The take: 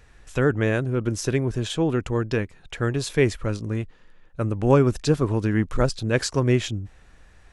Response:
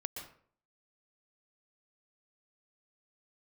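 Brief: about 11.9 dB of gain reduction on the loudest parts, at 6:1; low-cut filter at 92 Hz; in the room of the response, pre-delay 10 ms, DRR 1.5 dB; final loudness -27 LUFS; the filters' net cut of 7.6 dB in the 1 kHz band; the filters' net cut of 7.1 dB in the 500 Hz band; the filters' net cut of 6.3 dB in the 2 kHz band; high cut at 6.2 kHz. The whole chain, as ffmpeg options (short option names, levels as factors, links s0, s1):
-filter_complex "[0:a]highpass=92,lowpass=6200,equalizer=f=500:t=o:g=-8,equalizer=f=1000:t=o:g=-6,equalizer=f=2000:t=o:g=-5.5,acompressor=threshold=0.0316:ratio=6,asplit=2[s0][s1];[1:a]atrim=start_sample=2205,adelay=10[s2];[s1][s2]afir=irnorm=-1:irlink=0,volume=0.891[s3];[s0][s3]amix=inputs=2:normalize=0,volume=2"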